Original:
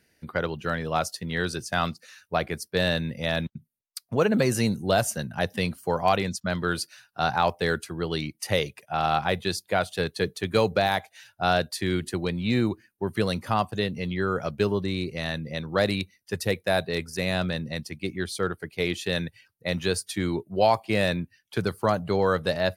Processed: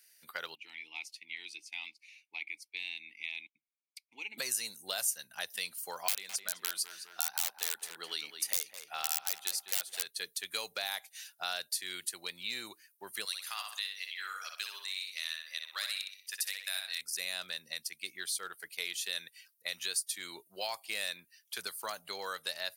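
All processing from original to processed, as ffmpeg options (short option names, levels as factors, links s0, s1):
-filter_complex "[0:a]asettb=1/sr,asplit=3[s0][s1][s2];[s0]atrim=end=0.554[s3];[s1]atrim=start=0.55:end=4.38,asetpts=PTS-STARTPTS,afade=t=in:d=0.004:c=qsin,afade=t=out:st=3.826:d=0.004:c=qsin,asplit=3[s4][s5][s6];[s4]bandpass=f=300:t=q:w=8,volume=1[s7];[s5]bandpass=f=870:t=q:w=8,volume=0.501[s8];[s6]bandpass=f=2240:t=q:w=8,volume=0.355[s9];[s7][s8][s9]amix=inputs=3:normalize=0,highshelf=f=1700:t=q:w=3:g=9[s10];[s2]atrim=start=4.376[s11];[s3][s10]acrossfade=d=0.004:c1=hsin:c2=qsin[s12];[s12][s11]acrossfade=d=0.004:c1=qsin:c2=hsin,asettb=1/sr,asplit=3[s13][s14][s15];[s13]atrim=end=6.084[s16];[s14]atrim=start=6.08:end=10.06,asetpts=PTS-STARTPTS,afade=t=in:d=0.004:c=qsin,afade=t=out:st=3.976:d=0.004:c=qsin,highpass=f=160:w=0.5412,highpass=f=160:w=1.3066,aeval=exprs='(mod(5.62*val(0)+1,2)-1)/5.62':c=same,asplit=2[s17][s18];[s18]adelay=209,lowpass=f=2100:p=1,volume=0.355,asplit=2[s19][s20];[s20]adelay=209,lowpass=f=2100:p=1,volume=0.38,asplit=2[s21][s22];[s22]adelay=209,lowpass=f=2100:p=1,volume=0.38,asplit=2[s23][s24];[s24]adelay=209,lowpass=f=2100:p=1,volume=0.38[s25];[s17][s19][s21][s23][s25]amix=inputs=5:normalize=0,atrim=end_sample=175518[s26];[s15]atrim=start=10.056[s27];[s16][s26]acrossfade=d=0.004:c1=hsin:c2=qsin[s28];[s28][s27]acrossfade=d=0.004:c1=qsin:c2=hsin,asettb=1/sr,asplit=3[s29][s30][s31];[s29]atrim=end=13.254[s32];[s30]atrim=start=13.25:end=17.01,asetpts=PTS-STARTPTS,afade=t=in:d=0.004:c=qsin,afade=t=out:st=3.756:d=0.004:c=qsin,highpass=1400,asplit=2[s33][s34];[s34]adelay=62,lowpass=f=4500:p=1,volume=0.631,asplit=2[s35][s36];[s36]adelay=62,lowpass=f=4500:p=1,volume=0.42,asplit=2[s37][s38];[s38]adelay=62,lowpass=f=4500:p=1,volume=0.42,asplit=2[s39][s40];[s40]adelay=62,lowpass=f=4500:p=1,volume=0.42,asplit=2[s41][s42];[s42]adelay=62,lowpass=f=4500:p=1,volume=0.42[s43];[s33][s35][s37][s39][s41][s43]amix=inputs=6:normalize=0,atrim=end_sample=165816[s44];[s31]atrim=start=17.006[s45];[s32][s44]acrossfade=d=0.004:c1=hsin:c2=qsin[s46];[s46][s45]acrossfade=d=0.004:c1=qsin:c2=hsin,aderivative,acompressor=threshold=0.00562:ratio=2,lowshelf=f=370:g=-8,volume=2.51"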